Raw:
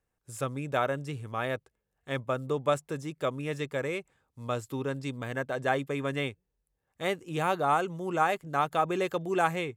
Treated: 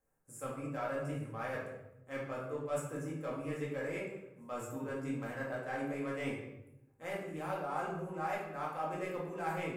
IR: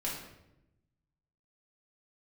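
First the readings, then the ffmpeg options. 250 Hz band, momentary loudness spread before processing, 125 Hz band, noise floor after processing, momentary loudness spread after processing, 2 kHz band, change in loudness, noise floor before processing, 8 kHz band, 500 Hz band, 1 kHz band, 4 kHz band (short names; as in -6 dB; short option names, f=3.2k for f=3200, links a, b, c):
-5.5 dB, 8 LU, -7.5 dB, -62 dBFS, 7 LU, -8.5 dB, -8.5 dB, -82 dBFS, -6.5 dB, -8.0 dB, -10.0 dB, -14.5 dB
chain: -filter_complex "[0:a]acrossover=split=5800[a][b];[a]adynamicsmooth=sensitivity=3:basefreq=1.9k[c];[c][b]amix=inputs=2:normalize=0,equalizer=f=3.5k:w=2.1:g=-6.5,areverse,acompressor=threshold=-41dB:ratio=6,areverse,lowshelf=f=350:g=-8[d];[1:a]atrim=start_sample=2205[e];[d][e]afir=irnorm=-1:irlink=0,volume=3.5dB"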